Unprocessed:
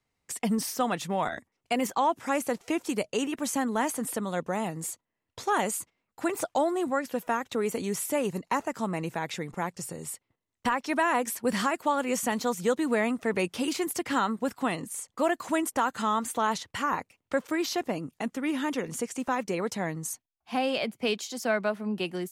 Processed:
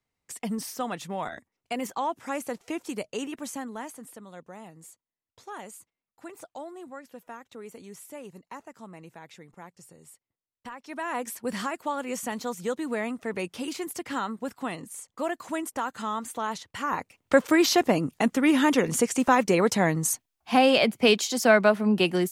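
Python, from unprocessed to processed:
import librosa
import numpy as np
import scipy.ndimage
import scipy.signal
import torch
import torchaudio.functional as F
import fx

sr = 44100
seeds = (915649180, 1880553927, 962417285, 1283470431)

y = fx.gain(x, sr, db=fx.line((3.32, -4.0), (4.14, -14.0), (10.76, -14.0), (11.2, -4.0), (16.72, -4.0), (17.34, 8.5)))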